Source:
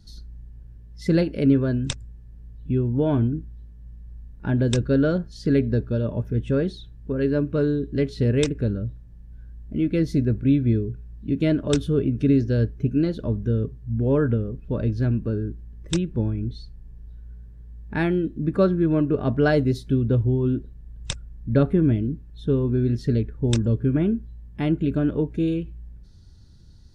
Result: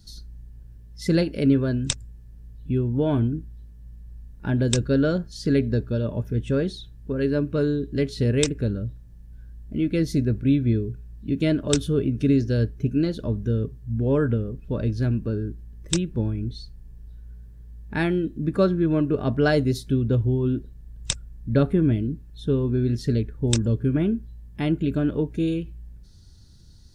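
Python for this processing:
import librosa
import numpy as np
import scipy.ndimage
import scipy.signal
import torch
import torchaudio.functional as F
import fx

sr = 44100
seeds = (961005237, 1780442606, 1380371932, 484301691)

y = fx.high_shelf(x, sr, hz=4200.0, db=10.5)
y = y * librosa.db_to_amplitude(-1.0)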